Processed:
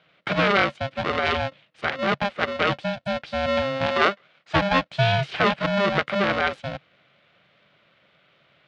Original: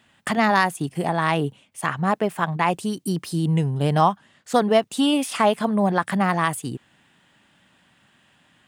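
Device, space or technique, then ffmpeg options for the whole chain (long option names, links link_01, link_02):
ring modulator pedal into a guitar cabinet: -filter_complex "[0:a]aeval=exprs='val(0)*sgn(sin(2*PI*400*n/s))':channel_layout=same,highpass=95,equalizer=frequency=140:width_type=q:width=4:gain=5,equalizer=frequency=250:width_type=q:width=4:gain=-10,equalizer=frequency=970:width_type=q:width=4:gain=-6,lowpass=frequency=3900:width=0.5412,lowpass=frequency=3900:width=1.3066,asettb=1/sr,asplit=3[link_01][link_02][link_03];[link_01]atrim=end=3.864[link_04];[link_02]atrim=start=3.86:end=4.56,asetpts=PTS-STARTPTS,afade=type=in:duration=0.004:curve=qsin,afade=type=out:start_time=0.696:duration=0.004:curve=qsin,highpass=frequency=270:poles=1[link_05];[link_03]atrim=start=4.556[link_06];[link_04][link_05]acrossfade=duration=0.004:curve1=hsin:curve2=qsin[link_07];[link_07][link_06]acrossfade=duration=0.004:curve1=qsin:curve2=hsin"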